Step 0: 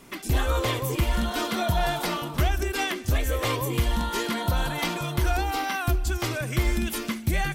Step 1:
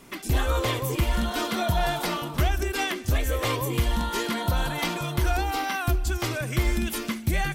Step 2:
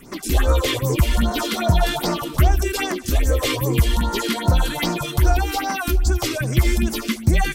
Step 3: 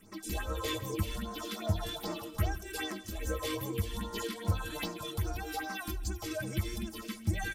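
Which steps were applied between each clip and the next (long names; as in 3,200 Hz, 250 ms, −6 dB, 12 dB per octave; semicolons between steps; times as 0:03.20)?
no processing that can be heard
all-pass phaser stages 4, 2.5 Hz, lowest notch 110–3,300 Hz; level +7.5 dB
stiff-string resonator 95 Hz, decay 0.2 s, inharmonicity 0.03; single-tap delay 162 ms −16.5 dB; amplitude modulation by smooth noise, depth 60%; level −4 dB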